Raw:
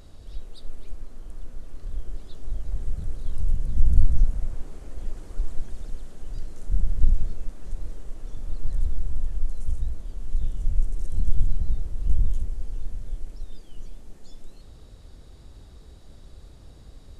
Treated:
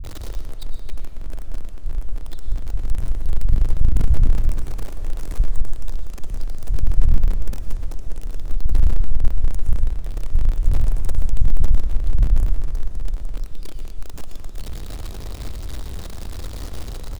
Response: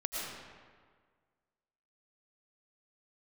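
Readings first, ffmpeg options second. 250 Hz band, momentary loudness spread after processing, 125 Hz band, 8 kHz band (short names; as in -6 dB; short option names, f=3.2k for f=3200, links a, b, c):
+8.0 dB, 14 LU, +6.5 dB, n/a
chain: -filter_complex "[0:a]aeval=exprs='val(0)+0.5*0.0422*sgn(val(0))':c=same,agate=range=-8dB:threshold=-19dB:ratio=16:detection=peak,lowshelf=f=120:g=6,asoftclip=type=tanh:threshold=-14.5dB,acrossover=split=170[a][b];[b]adelay=40[c];[a][c]amix=inputs=2:normalize=0,asplit=2[d][e];[1:a]atrim=start_sample=2205[f];[e][f]afir=irnorm=-1:irlink=0,volume=-7.5dB[g];[d][g]amix=inputs=2:normalize=0,volume=3.5dB"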